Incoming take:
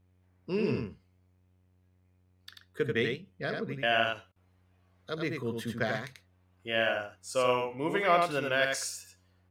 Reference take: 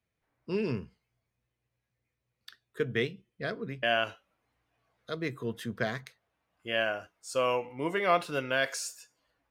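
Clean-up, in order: de-hum 91.2 Hz, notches 39; interpolate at 4.32, 39 ms; inverse comb 88 ms -4 dB

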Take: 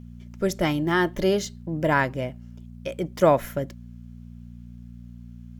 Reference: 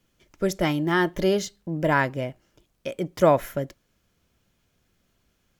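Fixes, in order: de-hum 59.3 Hz, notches 4

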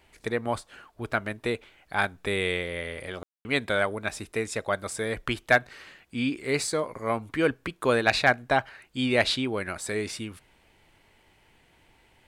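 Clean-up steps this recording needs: clip repair -7.5 dBFS; room tone fill 3.23–3.45

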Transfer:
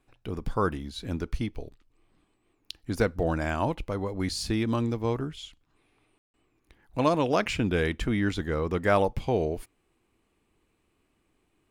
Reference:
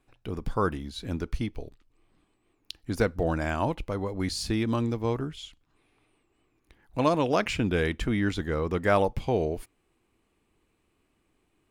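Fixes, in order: room tone fill 6.18–6.34

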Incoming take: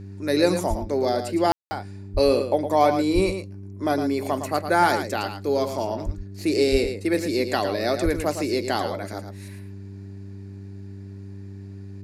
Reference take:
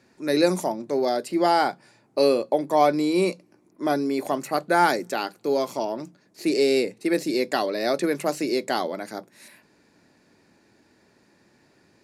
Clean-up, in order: de-hum 98.2 Hz, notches 4; de-plosive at 0.69/2.13/3.14/6.05/6.71/8.04; room tone fill 1.52–1.71; inverse comb 0.111 s -8.5 dB

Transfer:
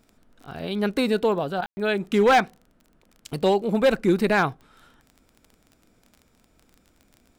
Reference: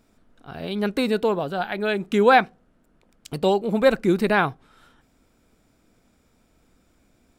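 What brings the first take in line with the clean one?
clip repair -12.5 dBFS; de-click; room tone fill 1.66–1.77; interpolate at 1.61, 11 ms

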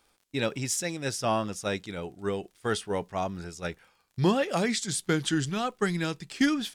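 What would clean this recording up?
clip repair -14 dBFS; de-click

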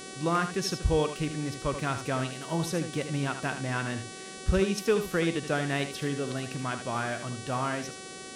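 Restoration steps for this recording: de-hum 378.6 Hz, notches 27; noise print and reduce 30 dB; inverse comb 78 ms -9.5 dB

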